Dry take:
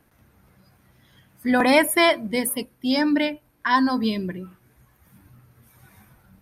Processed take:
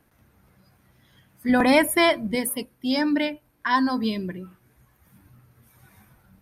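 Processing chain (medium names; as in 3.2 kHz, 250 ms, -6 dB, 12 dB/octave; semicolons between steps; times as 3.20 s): 1.49–2.35 s: bass shelf 150 Hz +11.5 dB; trim -2 dB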